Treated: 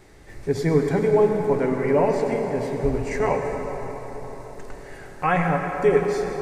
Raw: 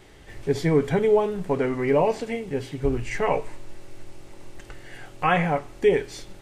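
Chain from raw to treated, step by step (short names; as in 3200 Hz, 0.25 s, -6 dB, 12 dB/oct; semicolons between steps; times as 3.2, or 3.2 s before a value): bell 3100 Hz -10 dB 0.42 oct; plate-style reverb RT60 4.7 s, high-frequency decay 0.55×, pre-delay 75 ms, DRR 3 dB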